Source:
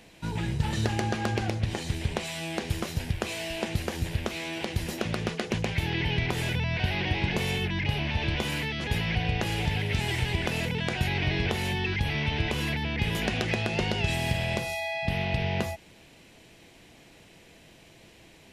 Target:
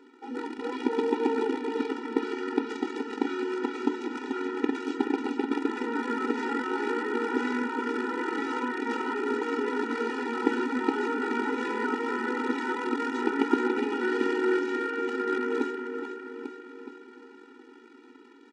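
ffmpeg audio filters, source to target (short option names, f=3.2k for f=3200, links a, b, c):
-filter_complex "[0:a]highpass=f=44:p=1,lowshelf=f=62:g=6.5,bandreject=f=50:t=h:w=6,bandreject=f=100:t=h:w=6,bandreject=f=150:t=h:w=6,bandreject=f=200:t=h:w=6,bandreject=f=250:t=h:w=6,bandreject=f=300:t=h:w=6,bandreject=f=350:t=h:w=6,bandreject=f=400:t=h:w=6,aecho=1:1:425|850|1275|1700|2125|2550|2975:0.562|0.304|0.164|0.0885|0.0478|0.0258|0.0139,asplit=2[a][b];[b]acrusher=bits=5:dc=4:mix=0:aa=0.000001,volume=-4.5dB[c];[a][c]amix=inputs=2:normalize=0,asetrate=24750,aresample=44100,atempo=1.7818,aresample=22050,aresample=44100,aemphasis=mode=reproduction:type=riaa,afftfilt=real='re*eq(mod(floor(b*sr/1024/250),2),1)':imag='im*eq(mod(floor(b*sr/1024/250),2),1)':win_size=1024:overlap=0.75"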